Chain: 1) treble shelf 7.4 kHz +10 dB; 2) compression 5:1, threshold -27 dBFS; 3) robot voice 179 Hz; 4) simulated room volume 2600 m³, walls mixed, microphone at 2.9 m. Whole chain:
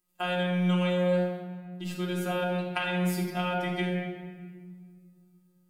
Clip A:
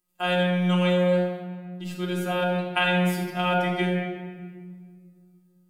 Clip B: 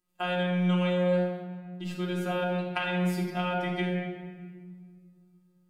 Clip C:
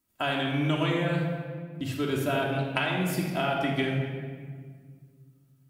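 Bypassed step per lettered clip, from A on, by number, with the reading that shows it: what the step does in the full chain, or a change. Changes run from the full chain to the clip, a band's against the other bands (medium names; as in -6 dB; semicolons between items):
2, mean gain reduction 3.5 dB; 1, 8 kHz band -5.5 dB; 3, 500 Hz band -2.0 dB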